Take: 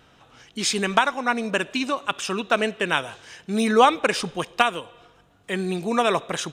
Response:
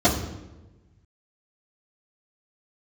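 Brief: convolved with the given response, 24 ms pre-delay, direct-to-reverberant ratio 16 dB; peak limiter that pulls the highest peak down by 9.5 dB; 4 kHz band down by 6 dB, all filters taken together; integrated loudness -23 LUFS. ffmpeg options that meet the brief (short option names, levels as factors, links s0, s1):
-filter_complex "[0:a]equalizer=f=4000:t=o:g=-8.5,alimiter=limit=0.266:level=0:latency=1,asplit=2[s0][s1];[1:a]atrim=start_sample=2205,adelay=24[s2];[s1][s2]afir=irnorm=-1:irlink=0,volume=0.0178[s3];[s0][s3]amix=inputs=2:normalize=0,volume=1.33"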